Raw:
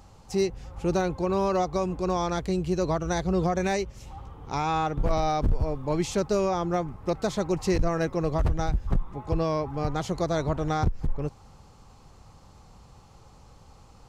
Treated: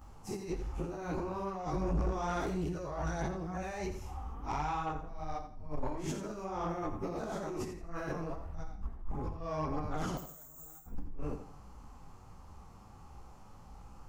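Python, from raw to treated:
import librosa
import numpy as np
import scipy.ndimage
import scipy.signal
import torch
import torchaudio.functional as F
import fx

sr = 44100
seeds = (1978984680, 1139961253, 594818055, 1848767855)

y = fx.spec_dilate(x, sr, span_ms=120)
y = fx.resample_bad(y, sr, factor=6, down='none', up='zero_stuff', at=(10.17, 10.85))
y = fx.over_compress(y, sr, threshold_db=-25.0, ratio=-0.5)
y = fx.graphic_eq(y, sr, hz=(125, 500, 2000, 4000, 8000), db=(-7, -7, -3, -11, -6))
y = fx.chorus_voices(y, sr, voices=2, hz=0.76, base_ms=15, depth_ms=4.8, mix_pct=65)
y = fx.low_shelf(y, sr, hz=280.0, db=11.0, at=(1.73, 2.13))
y = fx.echo_feedback(y, sr, ms=84, feedback_pct=30, wet_db=-10.5)
y = 10.0 ** (-21.5 / 20.0) * np.tanh(y / 10.0 ** (-21.5 / 20.0))
y = y * 10.0 ** (-5.0 / 20.0)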